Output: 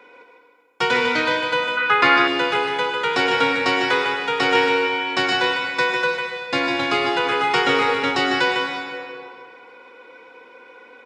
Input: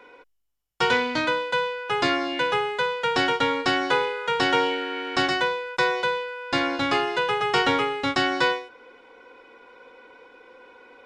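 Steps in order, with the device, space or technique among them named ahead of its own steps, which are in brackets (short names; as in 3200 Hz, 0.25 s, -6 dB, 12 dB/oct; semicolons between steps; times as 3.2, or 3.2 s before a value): PA in a hall (HPF 120 Hz 12 dB/oct; bell 2300 Hz +4 dB 0.3 oct; echo 0.151 s -6.5 dB; reverb RT60 2.2 s, pre-delay 92 ms, DRR 2.5 dB); 1.77–2.28 EQ curve 720 Hz 0 dB, 1300 Hz +11 dB, 7100 Hz -6 dB; gain +1 dB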